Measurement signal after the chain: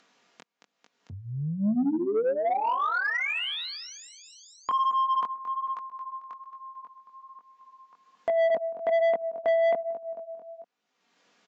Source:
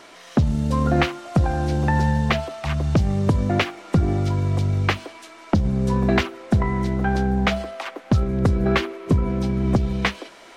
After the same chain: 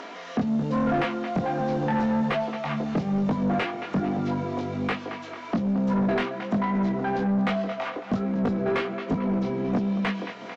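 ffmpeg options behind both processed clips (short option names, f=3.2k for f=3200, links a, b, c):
-filter_complex "[0:a]highpass=f=170:w=0.5412,highpass=f=170:w=1.3066,aecho=1:1:4.2:0.38,aecho=1:1:223|446|669|892:0.168|0.0739|0.0325|0.0143,aresample=16000,aresample=44100,flanger=delay=19:depth=4.2:speed=1.2,asplit=2[a][b];[b]acompressor=mode=upward:threshold=-28dB:ratio=2.5,volume=-3dB[c];[a][c]amix=inputs=2:normalize=0,asoftclip=type=tanh:threshold=-19.5dB,aemphasis=mode=reproduction:type=75fm,acrossover=split=4100[d][e];[e]acompressor=threshold=-49dB:ratio=4:attack=1:release=60[f];[d][f]amix=inputs=2:normalize=0,volume=-1dB"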